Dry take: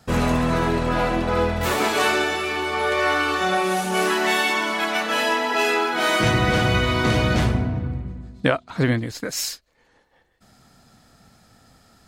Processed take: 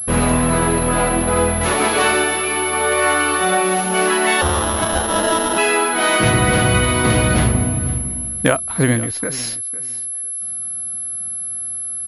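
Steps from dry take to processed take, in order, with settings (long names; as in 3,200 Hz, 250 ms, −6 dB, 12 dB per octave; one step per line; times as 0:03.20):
0:04.41–0:05.58: sample-rate reduction 2,300 Hz, jitter 0%
repeating echo 504 ms, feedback 20%, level −18 dB
switching amplifier with a slow clock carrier 11,000 Hz
level +4 dB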